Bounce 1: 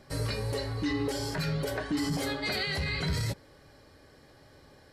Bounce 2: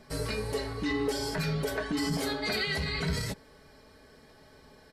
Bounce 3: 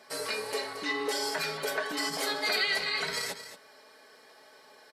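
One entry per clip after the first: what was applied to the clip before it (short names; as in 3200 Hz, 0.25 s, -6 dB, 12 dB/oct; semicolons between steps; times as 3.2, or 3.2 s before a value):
comb 4.6 ms, depth 54%
HPF 560 Hz 12 dB/oct; on a send: echo 0.225 s -11.5 dB; on the sum: gain +3.5 dB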